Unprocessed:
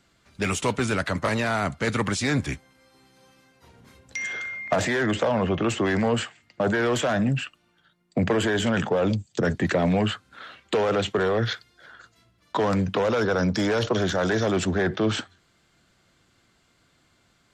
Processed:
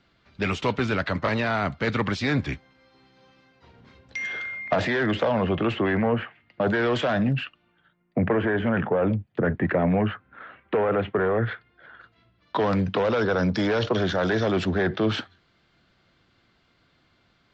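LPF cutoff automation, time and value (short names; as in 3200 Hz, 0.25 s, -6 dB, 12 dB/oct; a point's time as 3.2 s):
LPF 24 dB/oct
5.5 s 4600 Hz
6.18 s 2200 Hz
6.73 s 4600 Hz
7.25 s 4600 Hz
8.21 s 2200 Hz
11.44 s 2200 Hz
12.67 s 4800 Hz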